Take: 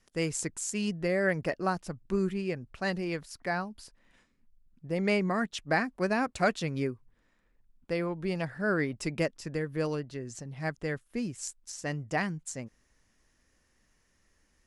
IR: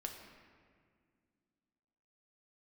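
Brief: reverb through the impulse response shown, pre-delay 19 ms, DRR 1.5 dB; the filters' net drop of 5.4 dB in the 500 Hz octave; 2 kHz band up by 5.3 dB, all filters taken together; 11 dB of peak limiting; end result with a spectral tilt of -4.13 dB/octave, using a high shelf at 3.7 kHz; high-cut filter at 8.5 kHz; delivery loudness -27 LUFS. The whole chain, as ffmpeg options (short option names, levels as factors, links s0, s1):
-filter_complex "[0:a]lowpass=8500,equalizer=f=500:t=o:g=-7.5,equalizer=f=2000:t=o:g=5.5,highshelf=f=3700:g=6,alimiter=limit=0.0794:level=0:latency=1,asplit=2[s0][s1];[1:a]atrim=start_sample=2205,adelay=19[s2];[s1][s2]afir=irnorm=-1:irlink=0,volume=1.06[s3];[s0][s3]amix=inputs=2:normalize=0,volume=1.68"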